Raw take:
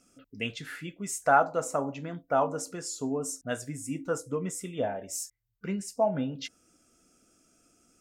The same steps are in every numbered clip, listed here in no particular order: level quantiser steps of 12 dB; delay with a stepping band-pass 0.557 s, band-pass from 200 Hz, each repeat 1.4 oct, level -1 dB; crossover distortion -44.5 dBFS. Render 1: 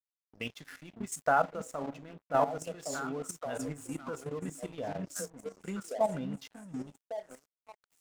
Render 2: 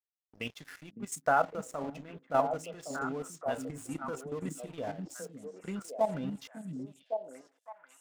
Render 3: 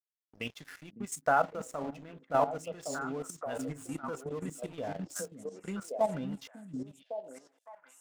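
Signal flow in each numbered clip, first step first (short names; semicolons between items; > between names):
delay with a stepping band-pass > crossover distortion > level quantiser; crossover distortion > level quantiser > delay with a stepping band-pass; crossover distortion > delay with a stepping band-pass > level quantiser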